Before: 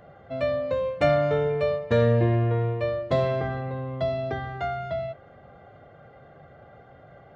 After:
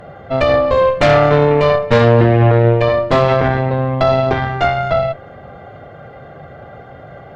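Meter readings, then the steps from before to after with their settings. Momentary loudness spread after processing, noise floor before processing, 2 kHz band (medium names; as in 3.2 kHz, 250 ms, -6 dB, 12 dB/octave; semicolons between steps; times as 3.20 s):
7 LU, -51 dBFS, +14.5 dB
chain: Chebyshev shaper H 6 -13 dB, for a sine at -9 dBFS; loudness maximiser +15 dB; trim -1 dB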